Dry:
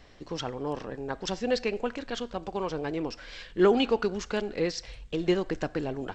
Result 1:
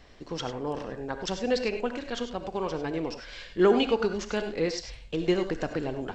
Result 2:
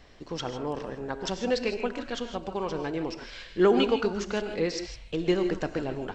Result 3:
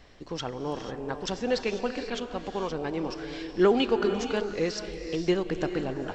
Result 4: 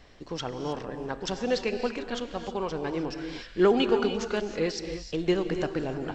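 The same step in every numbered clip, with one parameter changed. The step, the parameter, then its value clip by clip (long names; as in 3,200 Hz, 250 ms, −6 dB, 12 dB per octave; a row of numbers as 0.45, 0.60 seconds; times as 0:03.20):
reverb whose tail is shaped and stops, gate: 120, 180, 520, 340 milliseconds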